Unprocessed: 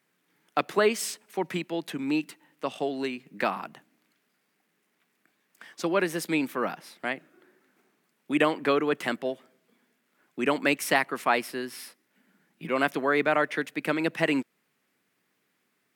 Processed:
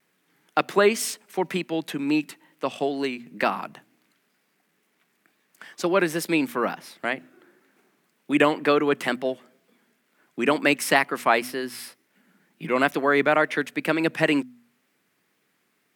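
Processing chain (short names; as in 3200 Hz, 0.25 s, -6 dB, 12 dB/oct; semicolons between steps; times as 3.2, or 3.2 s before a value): de-hum 123 Hz, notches 2; vibrato 2.1 Hz 64 cents; gain +4 dB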